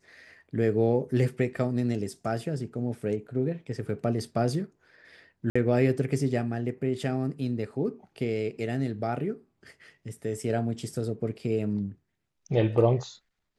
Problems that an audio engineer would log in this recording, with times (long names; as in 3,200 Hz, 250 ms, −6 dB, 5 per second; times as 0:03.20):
0:05.50–0:05.55: drop-out 55 ms